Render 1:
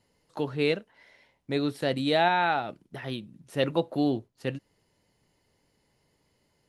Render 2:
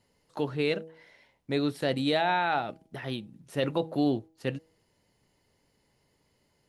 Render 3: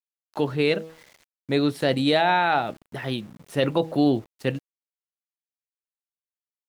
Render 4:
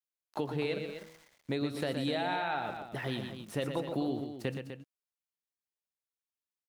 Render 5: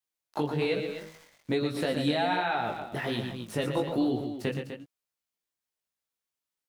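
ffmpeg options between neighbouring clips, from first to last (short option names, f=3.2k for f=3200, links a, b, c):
-af "bandreject=f=160.9:t=h:w=4,bandreject=f=321.8:t=h:w=4,bandreject=f=482.7:t=h:w=4,bandreject=f=643.6:t=h:w=4,bandreject=f=804.5:t=h:w=4,alimiter=limit=-16dB:level=0:latency=1:release=11"
-af "aeval=exprs='val(0)*gte(abs(val(0)),0.00224)':c=same,volume=6dB"
-af "acompressor=threshold=-26dB:ratio=6,aecho=1:1:119.5|250.7:0.447|0.316,volume=-4.5dB"
-af "flanger=delay=16:depth=4.6:speed=1.2,volume=8dB"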